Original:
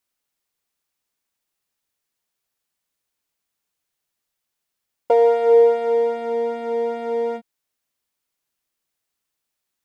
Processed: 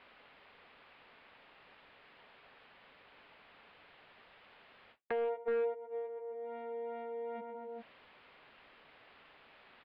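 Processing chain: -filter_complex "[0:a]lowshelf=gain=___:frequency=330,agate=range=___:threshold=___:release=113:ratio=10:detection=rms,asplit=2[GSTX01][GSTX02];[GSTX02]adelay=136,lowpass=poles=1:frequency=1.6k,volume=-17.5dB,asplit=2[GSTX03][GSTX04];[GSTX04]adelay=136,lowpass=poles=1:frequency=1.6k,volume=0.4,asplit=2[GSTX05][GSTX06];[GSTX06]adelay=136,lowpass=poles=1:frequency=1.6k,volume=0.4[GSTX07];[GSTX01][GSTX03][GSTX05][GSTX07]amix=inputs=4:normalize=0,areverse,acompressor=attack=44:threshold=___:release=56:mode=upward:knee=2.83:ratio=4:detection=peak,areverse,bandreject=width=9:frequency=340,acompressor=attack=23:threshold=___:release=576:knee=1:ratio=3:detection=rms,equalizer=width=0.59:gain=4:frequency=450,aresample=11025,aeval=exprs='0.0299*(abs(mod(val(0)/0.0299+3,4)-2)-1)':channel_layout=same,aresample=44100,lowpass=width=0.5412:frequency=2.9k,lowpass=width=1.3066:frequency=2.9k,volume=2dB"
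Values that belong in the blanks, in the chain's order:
-8, -44dB, -18dB, -33dB, -45dB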